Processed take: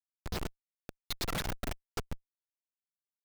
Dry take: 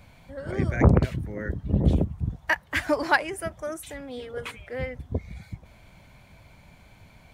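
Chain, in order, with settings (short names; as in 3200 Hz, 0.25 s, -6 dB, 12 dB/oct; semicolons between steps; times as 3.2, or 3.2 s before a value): differentiator; wide varispeed 2.26×; echo with dull and thin repeats by turns 0.122 s, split 2300 Hz, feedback 84%, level -14 dB; Schmitt trigger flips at -39 dBFS; gain +14 dB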